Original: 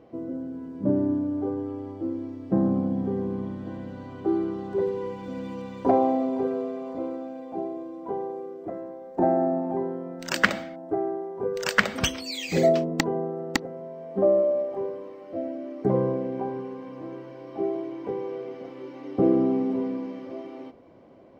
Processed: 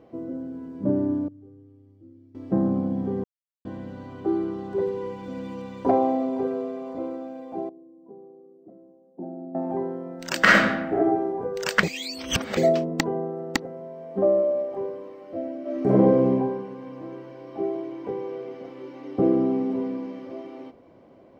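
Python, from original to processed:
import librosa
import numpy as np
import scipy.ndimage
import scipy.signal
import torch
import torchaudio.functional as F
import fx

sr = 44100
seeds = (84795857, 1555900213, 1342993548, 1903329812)

y = fx.tone_stack(x, sr, knobs='10-0-1', at=(1.28, 2.35))
y = fx.ladder_bandpass(y, sr, hz=240.0, resonance_pct=25, at=(7.69, 9.55))
y = fx.reverb_throw(y, sr, start_s=10.4, length_s=0.88, rt60_s=0.88, drr_db=-7.5)
y = fx.reverb_throw(y, sr, start_s=15.61, length_s=0.68, rt60_s=1.1, drr_db=-6.5)
y = fx.edit(y, sr, fx.silence(start_s=3.24, length_s=0.41),
    fx.reverse_span(start_s=11.83, length_s=0.74), tone=tone)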